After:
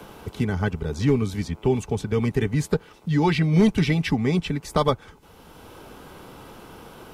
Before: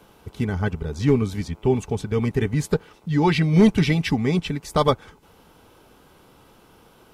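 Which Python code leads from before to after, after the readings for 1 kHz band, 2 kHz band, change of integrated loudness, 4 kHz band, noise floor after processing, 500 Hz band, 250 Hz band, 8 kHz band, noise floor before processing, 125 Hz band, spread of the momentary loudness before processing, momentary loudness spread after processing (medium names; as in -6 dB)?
-1.5 dB, -1.0 dB, -1.5 dB, -1.5 dB, -50 dBFS, -1.5 dB, -1.5 dB, -1.0 dB, -54 dBFS, -1.0 dB, 10 LU, 8 LU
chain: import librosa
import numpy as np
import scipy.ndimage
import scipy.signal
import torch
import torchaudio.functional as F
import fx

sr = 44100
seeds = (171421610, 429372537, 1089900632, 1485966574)

y = fx.band_squash(x, sr, depth_pct=40)
y = F.gain(torch.from_numpy(y), -1.0).numpy()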